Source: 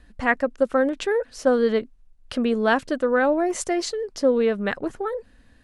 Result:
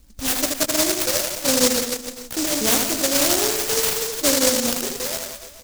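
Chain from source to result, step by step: sawtooth pitch modulation +5 st, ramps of 1306 ms; high-order bell 5.1 kHz +10.5 dB; level-controlled noise filter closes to 2.3 kHz, open at -19 dBFS; reverse bouncing-ball echo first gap 80 ms, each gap 1.2×, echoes 5; delay time shaken by noise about 5.9 kHz, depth 0.32 ms

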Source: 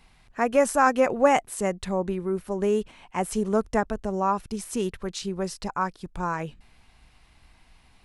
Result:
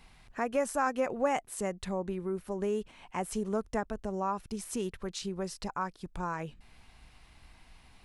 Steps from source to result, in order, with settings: compression 1.5:1, threshold -43 dBFS, peak gain reduction 10.5 dB

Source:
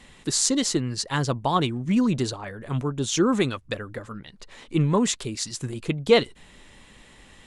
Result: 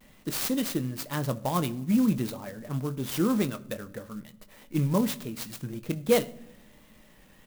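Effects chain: small resonant body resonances 210/580 Hz, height 8 dB; vibrato 1.2 Hz 66 cents; doubling 23 ms -12 dB; simulated room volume 2500 m³, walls furnished, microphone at 0.54 m; sampling jitter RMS 0.046 ms; trim -7.5 dB

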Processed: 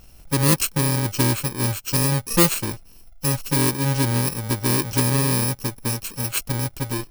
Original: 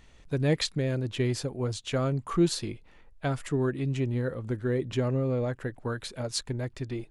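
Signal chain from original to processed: bit-reversed sample order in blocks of 64 samples; loudspeaker Doppler distortion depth 0.32 ms; trim +8.5 dB

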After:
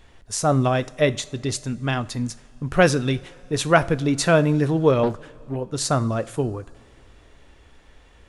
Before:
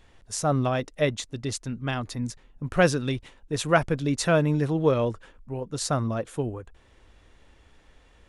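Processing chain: two-slope reverb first 0.38 s, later 3.2 s, from -19 dB, DRR 13.5 dB; 5.03–5.56 s: loudspeaker Doppler distortion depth 0.64 ms; trim +4.5 dB

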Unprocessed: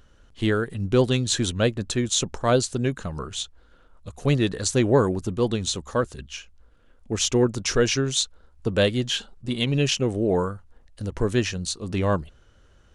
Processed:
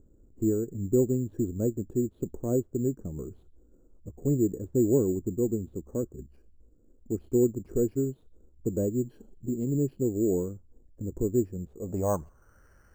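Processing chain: local Wiener filter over 9 samples; feedback echo behind a high-pass 60 ms, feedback 51%, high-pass 3.5 kHz, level -14 dB; low-pass sweep 350 Hz -> 1.8 kHz, 11.55–12.67 s; careless resampling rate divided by 6×, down filtered, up hold; in parallel at -2 dB: compression, threshold -35 dBFS, peak gain reduction 22 dB; on the sum: trim -8.5 dB

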